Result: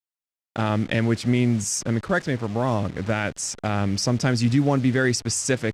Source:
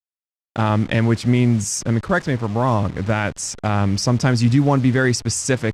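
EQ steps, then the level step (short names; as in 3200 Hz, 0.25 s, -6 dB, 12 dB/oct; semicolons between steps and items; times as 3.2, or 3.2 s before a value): low shelf 130 Hz -7 dB; dynamic EQ 1000 Hz, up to -6 dB, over -36 dBFS, Q 2.1; -2.0 dB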